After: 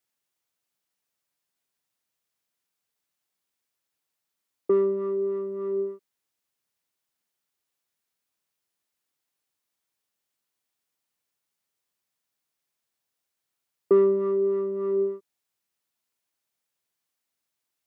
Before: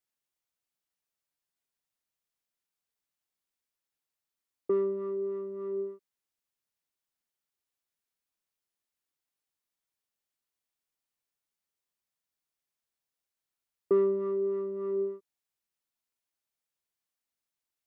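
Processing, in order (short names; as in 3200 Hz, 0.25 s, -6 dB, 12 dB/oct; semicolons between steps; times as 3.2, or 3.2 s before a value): HPF 79 Hz; gain +6 dB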